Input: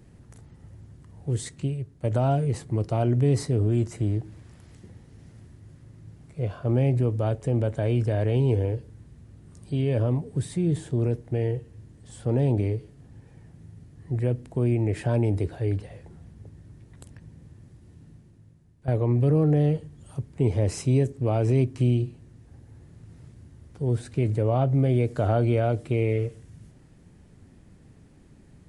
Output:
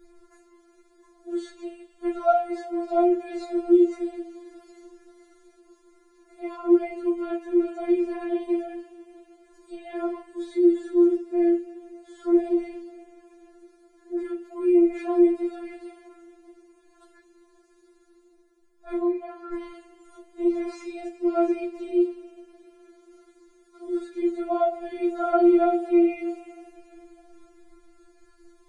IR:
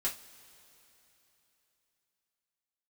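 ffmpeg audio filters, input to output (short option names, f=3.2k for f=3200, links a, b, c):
-filter_complex "[0:a]acrossover=split=3800[a][b];[b]acompressor=threshold=-60dB:ratio=4:attack=1:release=60[c];[a][c]amix=inputs=2:normalize=0,asettb=1/sr,asplit=3[d][e][f];[d]atrim=end=19.004[g];[e]atrim=start=19:end=19.53,asetpts=PTS-STARTPTS,afade=t=in:d=0.004:c=qsin,afade=t=out:st=0.526:d=0.004:c=qsin,acrossover=split=330 4400:gain=0.0891 1 0.251[h][i][j];[h][i][j]amix=inputs=3:normalize=0[k];[f]atrim=start=19.526[l];[g][k]acrossfade=d=0.004:c1=hsin:c2=qsin[m];[m][l]acrossfade=d=0.004:c1=qsin:c2=hsin[n];[1:a]atrim=start_sample=2205[o];[n][o]afir=irnorm=-1:irlink=0,afftfilt=real='re*4*eq(mod(b,16),0)':imag='im*4*eq(mod(b,16),0)':win_size=2048:overlap=0.75"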